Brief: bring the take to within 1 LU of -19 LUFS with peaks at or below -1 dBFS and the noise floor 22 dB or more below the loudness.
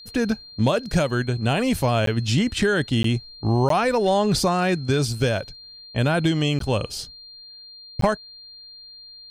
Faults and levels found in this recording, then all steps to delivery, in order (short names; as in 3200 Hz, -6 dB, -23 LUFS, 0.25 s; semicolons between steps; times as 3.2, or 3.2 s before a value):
dropouts 5; longest dropout 13 ms; steady tone 4200 Hz; tone level -41 dBFS; loudness -22.5 LUFS; peak -9.5 dBFS; loudness target -19.0 LUFS
-> interpolate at 2.06/3.03/3.69/6.59/8.01, 13 ms; notch 4200 Hz, Q 30; gain +3.5 dB